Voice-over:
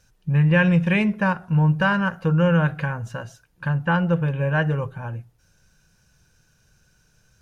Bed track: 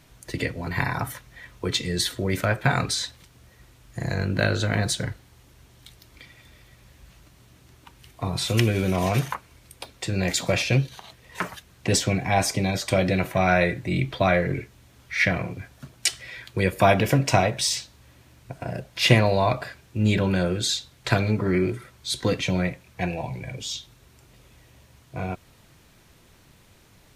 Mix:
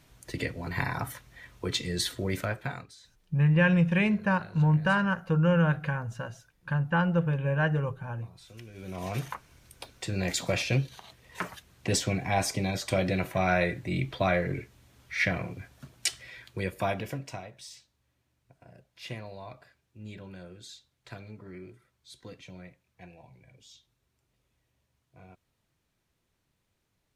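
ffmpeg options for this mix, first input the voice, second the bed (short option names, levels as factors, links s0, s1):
-filter_complex "[0:a]adelay=3050,volume=0.562[s0];[1:a]volume=6.31,afade=t=out:st=2.28:d=0.59:silence=0.0841395,afade=t=in:st=8.71:d=0.8:silence=0.0891251,afade=t=out:st=16.02:d=1.39:silence=0.141254[s1];[s0][s1]amix=inputs=2:normalize=0"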